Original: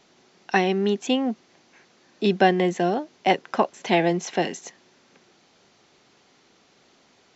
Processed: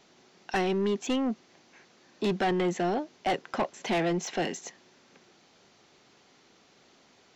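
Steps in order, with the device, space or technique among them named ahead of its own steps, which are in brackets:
saturation between pre-emphasis and de-emphasis (high-shelf EQ 3,800 Hz +8.5 dB; soft clipping −20 dBFS, distortion −7 dB; high-shelf EQ 3,800 Hz −8.5 dB)
level −1.5 dB

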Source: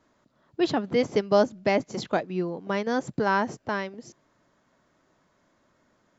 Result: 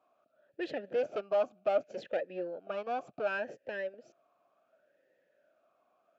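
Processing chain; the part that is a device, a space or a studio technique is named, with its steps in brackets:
talk box (tube saturation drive 22 dB, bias 0.45; formant filter swept between two vowels a-e 0.68 Hz)
level +7 dB

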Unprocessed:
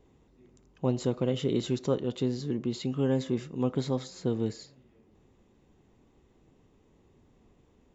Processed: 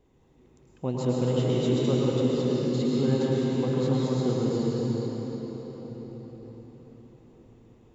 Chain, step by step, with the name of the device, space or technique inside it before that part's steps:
cathedral (convolution reverb RT60 5.5 s, pre-delay 99 ms, DRR −6 dB)
level −2.5 dB

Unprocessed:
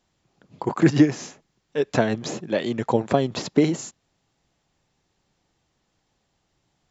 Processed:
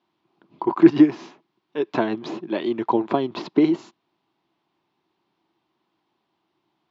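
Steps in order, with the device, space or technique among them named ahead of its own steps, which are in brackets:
kitchen radio (loudspeaker in its box 210–4,100 Hz, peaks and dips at 340 Hz +10 dB, 510 Hz −8 dB, 1,000 Hz +8 dB, 1,800 Hz −4 dB)
level −1.5 dB

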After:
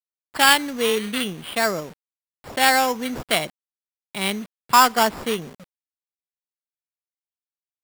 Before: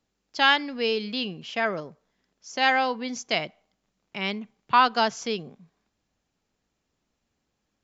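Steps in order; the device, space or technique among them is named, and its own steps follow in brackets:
early 8-bit sampler (sample-rate reduction 6,200 Hz, jitter 0%; bit reduction 8 bits)
level +4.5 dB

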